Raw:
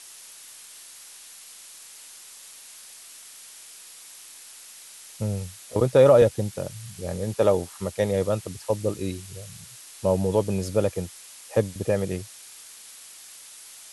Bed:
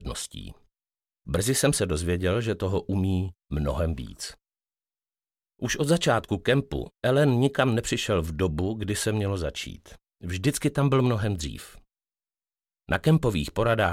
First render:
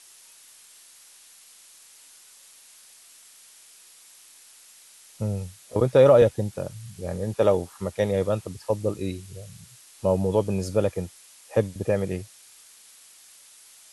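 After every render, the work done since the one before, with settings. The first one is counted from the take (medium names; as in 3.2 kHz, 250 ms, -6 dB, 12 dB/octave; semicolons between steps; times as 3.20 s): noise print and reduce 6 dB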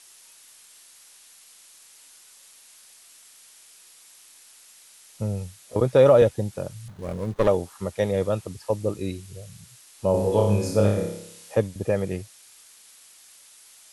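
6.88–7.48 s: sliding maximum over 17 samples; 10.11–11.55 s: flutter echo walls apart 5 m, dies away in 0.71 s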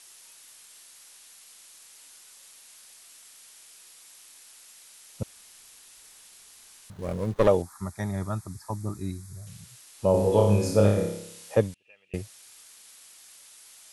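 5.23–6.90 s: room tone; 7.62–9.47 s: static phaser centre 1.2 kHz, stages 4; 11.74–12.14 s: band-pass filter 2.7 kHz, Q 20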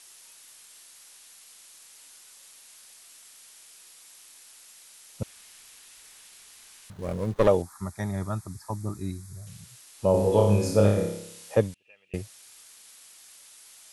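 5.22–6.93 s: peaking EQ 2.2 kHz +3.5 dB 1.7 oct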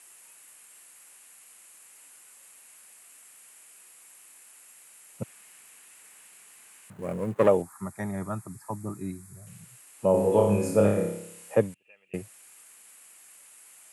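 high-pass 120 Hz 24 dB/octave; high-order bell 4.5 kHz -10.5 dB 1.1 oct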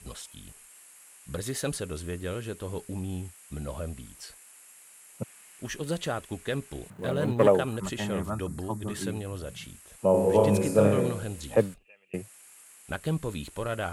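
add bed -9 dB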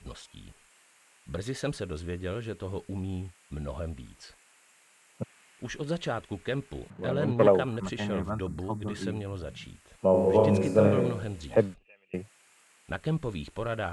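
distance through air 91 m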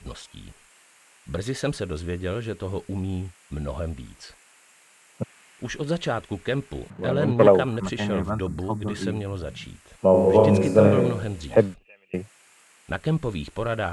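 trim +5.5 dB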